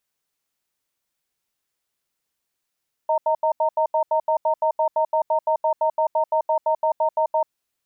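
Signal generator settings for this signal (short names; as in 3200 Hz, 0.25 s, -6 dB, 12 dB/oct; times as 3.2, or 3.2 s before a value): cadence 629 Hz, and 920 Hz, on 0.09 s, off 0.08 s, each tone -19.5 dBFS 4.42 s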